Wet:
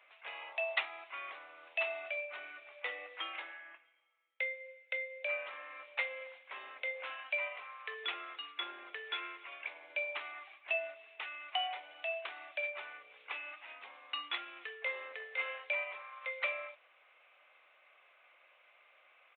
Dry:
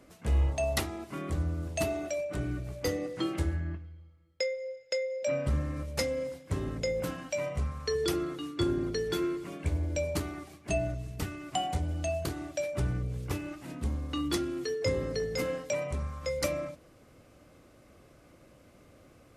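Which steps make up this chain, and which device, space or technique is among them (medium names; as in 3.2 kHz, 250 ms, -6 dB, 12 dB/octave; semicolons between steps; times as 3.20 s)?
musical greeting card (resampled via 8 kHz; high-pass 750 Hz 24 dB/octave; peaking EQ 2.4 kHz +10 dB 0.59 oct); trim -2.5 dB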